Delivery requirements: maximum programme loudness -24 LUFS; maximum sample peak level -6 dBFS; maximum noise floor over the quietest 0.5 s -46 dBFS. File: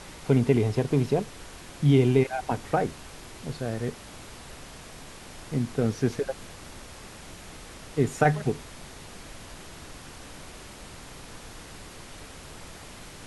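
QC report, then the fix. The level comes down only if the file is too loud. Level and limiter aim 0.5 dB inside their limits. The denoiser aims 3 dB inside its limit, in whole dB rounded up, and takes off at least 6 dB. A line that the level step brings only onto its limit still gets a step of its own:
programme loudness -26.5 LUFS: pass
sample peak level -8.0 dBFS: pass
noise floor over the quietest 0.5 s -44 dBFS: fail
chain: noise reduction 6 dB, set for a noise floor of -44 dBFS

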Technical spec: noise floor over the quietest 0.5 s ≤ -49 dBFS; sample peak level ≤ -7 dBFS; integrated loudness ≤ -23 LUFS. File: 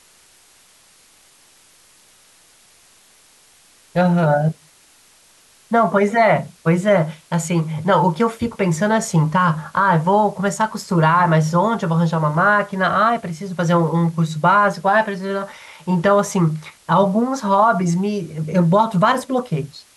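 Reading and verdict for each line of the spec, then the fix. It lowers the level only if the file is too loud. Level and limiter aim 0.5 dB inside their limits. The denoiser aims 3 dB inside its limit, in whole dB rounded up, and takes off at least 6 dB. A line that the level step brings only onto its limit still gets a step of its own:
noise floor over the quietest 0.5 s -52 dBFS: pass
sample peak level -5.5 dBFS: fail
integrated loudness -17.5 LUFS: fail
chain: trim -6 dB

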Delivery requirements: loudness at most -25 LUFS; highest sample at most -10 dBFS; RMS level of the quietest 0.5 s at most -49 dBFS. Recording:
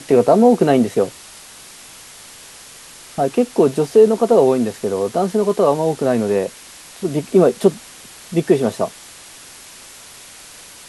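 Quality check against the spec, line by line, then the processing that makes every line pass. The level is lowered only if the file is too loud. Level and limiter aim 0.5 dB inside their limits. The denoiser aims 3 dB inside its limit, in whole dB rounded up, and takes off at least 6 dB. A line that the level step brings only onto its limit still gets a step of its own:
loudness -16.5 LUFS: fail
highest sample -2.0 dBFS: fail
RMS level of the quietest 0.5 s -40 dBFS: fail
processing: noise reduction 6 dB, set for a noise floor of -40 dBFS; trim -9 dB

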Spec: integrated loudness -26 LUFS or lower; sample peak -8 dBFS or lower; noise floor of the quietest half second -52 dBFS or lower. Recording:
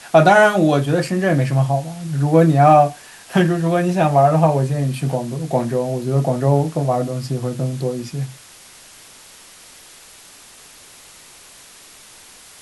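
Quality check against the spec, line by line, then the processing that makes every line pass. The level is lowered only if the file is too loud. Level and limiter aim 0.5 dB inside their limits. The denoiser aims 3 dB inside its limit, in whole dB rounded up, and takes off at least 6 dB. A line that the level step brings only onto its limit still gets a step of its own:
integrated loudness -17.0 LUFS: fail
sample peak -1.5 dBFS: fail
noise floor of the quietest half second -44 dBFS: fail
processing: trim -9.5 dB

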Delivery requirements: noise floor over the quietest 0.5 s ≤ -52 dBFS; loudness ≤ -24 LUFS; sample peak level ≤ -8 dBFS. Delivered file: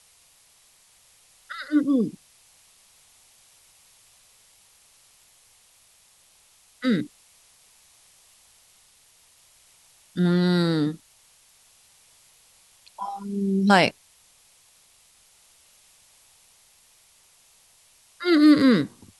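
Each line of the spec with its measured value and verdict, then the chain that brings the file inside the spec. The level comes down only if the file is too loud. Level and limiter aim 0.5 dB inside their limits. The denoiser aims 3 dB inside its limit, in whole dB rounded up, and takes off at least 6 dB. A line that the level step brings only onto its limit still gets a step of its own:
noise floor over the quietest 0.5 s -58 dBFS: pass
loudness -22.0 LUFS: fail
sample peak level -3.0 dBFS: fail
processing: trim -2.5 dB; peak limiter -8.5 dBFS

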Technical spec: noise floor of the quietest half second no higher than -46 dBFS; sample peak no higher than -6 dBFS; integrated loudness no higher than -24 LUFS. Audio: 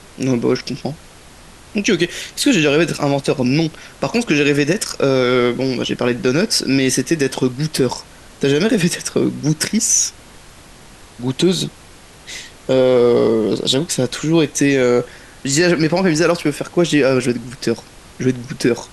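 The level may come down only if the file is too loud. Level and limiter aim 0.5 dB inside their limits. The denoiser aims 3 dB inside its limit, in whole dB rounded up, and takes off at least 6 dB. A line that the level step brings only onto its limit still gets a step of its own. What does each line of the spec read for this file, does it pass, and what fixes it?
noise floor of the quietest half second -42 dBFS: fail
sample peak -4.5 dBFS: fail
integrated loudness -17.0 LUFS: fail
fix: trim -7.5 dB

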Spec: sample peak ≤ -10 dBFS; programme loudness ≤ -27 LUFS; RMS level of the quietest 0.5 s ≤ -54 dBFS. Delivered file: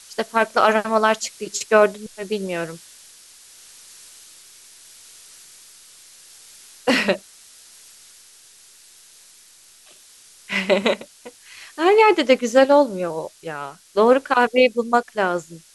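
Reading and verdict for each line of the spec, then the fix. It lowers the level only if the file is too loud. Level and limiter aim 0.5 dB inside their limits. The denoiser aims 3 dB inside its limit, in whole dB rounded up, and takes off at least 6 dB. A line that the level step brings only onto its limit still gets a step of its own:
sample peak -4.0 dBFS: fail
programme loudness -19.0 LUFS: fail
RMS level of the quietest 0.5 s -50 dBFS: fail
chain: trim -8.5 dB

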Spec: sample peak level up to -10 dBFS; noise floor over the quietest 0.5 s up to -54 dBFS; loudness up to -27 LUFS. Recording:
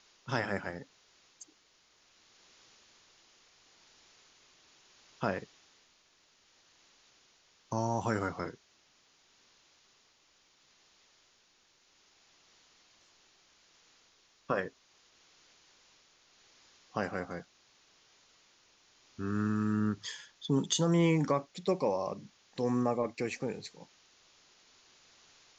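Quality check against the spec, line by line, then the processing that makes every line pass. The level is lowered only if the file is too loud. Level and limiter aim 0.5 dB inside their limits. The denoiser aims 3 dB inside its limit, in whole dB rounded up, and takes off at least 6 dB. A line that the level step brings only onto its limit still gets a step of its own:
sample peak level -16.0 dBFS: pass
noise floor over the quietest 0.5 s -68 dBFS: pass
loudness -33.5 LUFS: pass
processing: none needed

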